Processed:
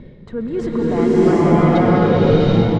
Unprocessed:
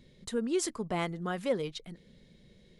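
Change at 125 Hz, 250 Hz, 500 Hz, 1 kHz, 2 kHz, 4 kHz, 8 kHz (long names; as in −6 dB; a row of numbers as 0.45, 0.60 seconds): +26.0 dB, +21.5 dB, +19.0 dB, +19.5 dB, +14.0 dB, +10.5 dB, can't be measured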